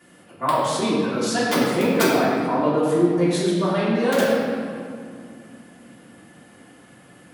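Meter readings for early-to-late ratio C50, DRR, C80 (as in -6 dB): -1.5 dB, -10.0 dB, 0.0 dB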